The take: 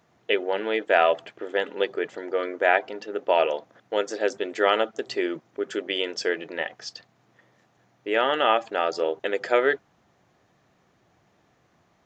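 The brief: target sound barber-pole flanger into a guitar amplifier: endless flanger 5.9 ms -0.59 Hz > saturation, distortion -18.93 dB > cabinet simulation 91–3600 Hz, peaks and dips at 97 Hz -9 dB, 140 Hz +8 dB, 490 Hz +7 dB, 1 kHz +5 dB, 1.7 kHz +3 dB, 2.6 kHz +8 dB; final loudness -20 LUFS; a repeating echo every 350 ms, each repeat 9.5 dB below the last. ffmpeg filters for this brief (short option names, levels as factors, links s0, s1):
-filter_complex "[0:a]aecho=1:1:350|700|1050|1400:0.335|0.111|0.0365|0.012,asplit=2[s0][s1];[s1]adelay=5.9,afreqshift=-0.59[s2];[s0][s2]amix=inputs=2:normalize=1,asoftclip=threshold=0.168,highpass=91,equalizer=f=97:t=q:w=4:g=-9,equalizer=f=140:t=q:w=4:g=8,equalizer=f=490:t=q:w=4:g=7,equalizer=f=1000:t=q:w=4:g=5,equalizer=f=1700:t=q:w=4:g=3,equalizer=f=2600:t=q:w=4:g=8,lowpass=f=3600:w=0.5412,lowpass=f=3600:w=1.3066,volume=1.88"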